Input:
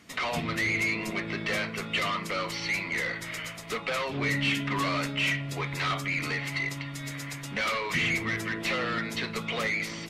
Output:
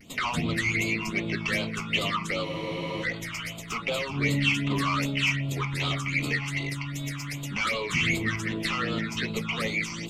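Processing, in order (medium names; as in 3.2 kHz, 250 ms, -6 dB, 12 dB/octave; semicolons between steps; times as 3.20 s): vibrato 0.31 Hz 18 cents; phase shifter stages 8, 2.6 Hz, lowest notch 500–1800 Hz; spectral freeze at 2.45 s, 0.57 s; trim +4.5 dB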